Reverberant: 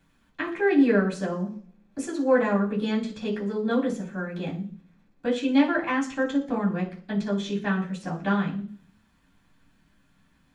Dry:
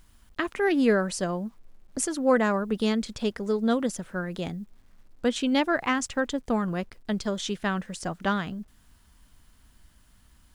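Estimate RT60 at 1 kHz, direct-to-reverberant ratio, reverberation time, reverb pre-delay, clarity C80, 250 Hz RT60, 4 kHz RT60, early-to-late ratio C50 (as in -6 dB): 0.40 s, -13.5 dB, 0.45 s, 3 ms, 15.5 dB, 0.65 s, 0.55 s, 10.5 dB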